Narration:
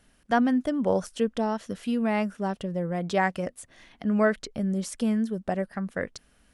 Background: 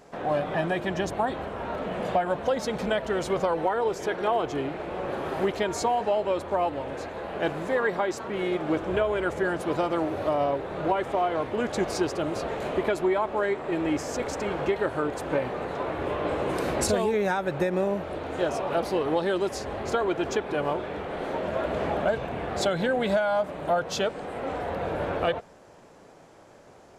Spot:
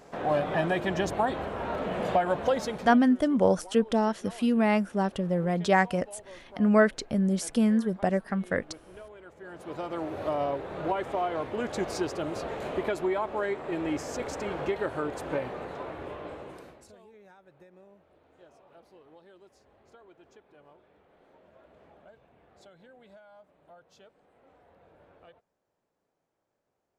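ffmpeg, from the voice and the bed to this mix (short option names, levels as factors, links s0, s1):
-filter_complex "[0:a]adelay=2550,volume=1.26[s0];[1:a]volume=7.94,afade=t=out:st=2.53:d=0.45:silence=0.0794328,afade=t=in:st=9.39:d=0.91:silence=0.125893,afade=t=out:st=15.29:d=1.51:silence=0.0530884[s1];[s0][s1]amix=inputs=2:normalize=0"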